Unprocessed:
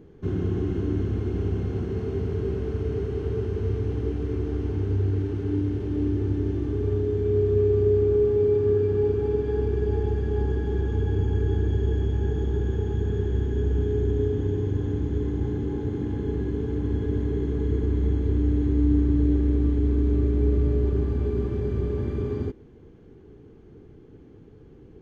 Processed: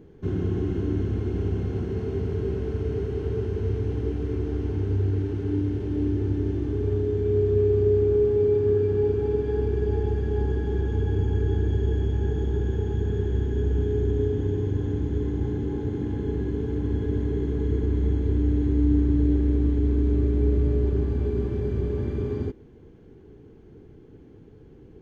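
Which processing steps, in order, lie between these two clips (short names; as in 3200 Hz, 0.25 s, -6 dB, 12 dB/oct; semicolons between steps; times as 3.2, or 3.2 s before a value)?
notch 1200 Hz, Q 16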